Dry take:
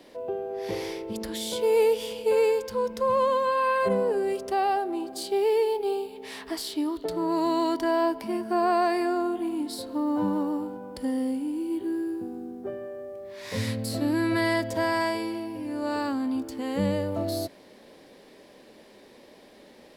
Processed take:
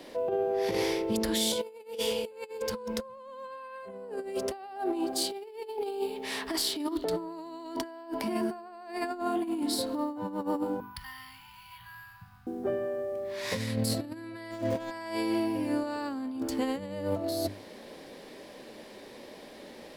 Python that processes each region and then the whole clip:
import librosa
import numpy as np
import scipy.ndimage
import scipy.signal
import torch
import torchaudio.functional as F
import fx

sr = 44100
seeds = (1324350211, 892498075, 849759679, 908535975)

y = fx.chain(x, sr, fx.cheby1_bandstop(low_hz=160.0, high_hz=970.0, order=4),
    fx.air_absorb(metres=64.0),
    fx.resample_bad(factor=3, down='filtered', up='hold'), at=(10.8, 12.47))
y = fx.chain(y, sr, fx.median_filter(points=25),
    fx.room_flutter(wall_m=9.8, rt60_s=0.22), at=(14.51, 14.91))
y = fx.hum_notches(y, sr, base_hz=50, count=9)
y = fx.over_compress(y, sr, threshold_db=-32.0, ratio=-0.5)